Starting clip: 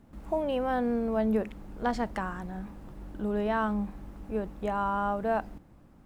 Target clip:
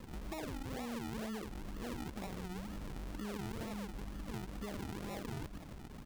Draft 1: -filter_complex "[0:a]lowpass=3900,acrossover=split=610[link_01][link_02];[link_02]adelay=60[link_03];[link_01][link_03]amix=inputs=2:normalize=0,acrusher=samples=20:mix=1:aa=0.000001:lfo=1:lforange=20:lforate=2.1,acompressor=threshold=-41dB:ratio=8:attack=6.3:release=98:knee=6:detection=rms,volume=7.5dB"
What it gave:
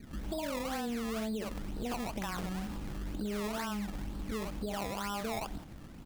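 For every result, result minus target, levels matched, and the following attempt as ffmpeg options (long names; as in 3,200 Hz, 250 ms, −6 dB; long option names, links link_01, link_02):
downward compressor: peak gain reduction −6.5 dB; sample-and-hold swept by an LFO: distortion −9 dB
-filter_complex "[0:a]lowpass=3900,acrossover=split=610[link_01][link_02];[link_02]adelay=60[link_03];[link_01][link_03]amix=inputs=2:normalize=0,acrusher=samples=20:mix=1:aa=0.000001:lfo=1:lforange=20:lforate=2.1,acompressor=threshold=-48dB:ratio=8:attack=6.3:release=98:knee=6:detection=rms,volume=7.5dB"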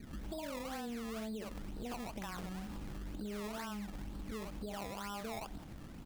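sample-and-hold swept by an LFO: distortion −9 dB
-filter_complex "[0:a]lowpass=3900,acrossover=split=610[link_01][link_02];[link_02]adelay=60[link_03];[link_01][link_03]amix=inputs=2:normalize=0,acrusher=samples=55:mix=1:aa=0.000001:lfo=1:lforange=55:lforate=2.1,acompressor=threshold=-48dB:ratio=8:attack=6.3:release=98:knee=6:detection=rms,volume=7.5dB"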